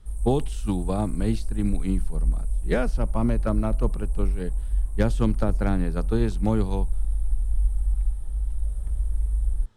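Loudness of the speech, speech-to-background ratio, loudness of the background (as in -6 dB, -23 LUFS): -28.0 LUFS, 2.0 dB, -30.0 LUFS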